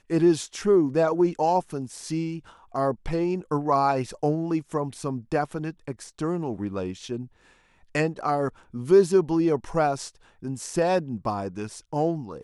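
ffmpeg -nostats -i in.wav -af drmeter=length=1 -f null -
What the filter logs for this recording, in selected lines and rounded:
Channel 1: DR: 10.5
Overall DR: 10.5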